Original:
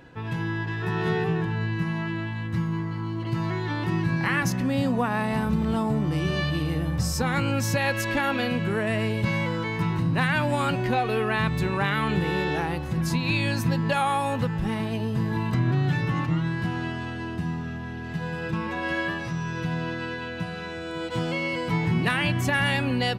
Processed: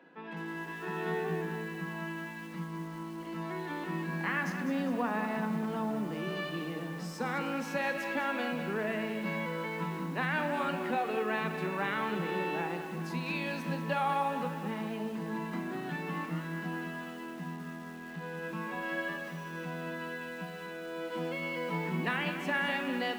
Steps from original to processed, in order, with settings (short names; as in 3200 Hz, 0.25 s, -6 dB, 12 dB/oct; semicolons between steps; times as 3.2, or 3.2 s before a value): steep high-pass 160 Hz 96 dB/oct; tone controls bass -3 dB, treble -13 dB; on a send at -10 dB: reverb RT60 0.50 s, pre-delay 26 ms; on the sum: lo-fi delay 0.202 s, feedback 55%, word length 7-bit, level -9 dB; gain -7 dB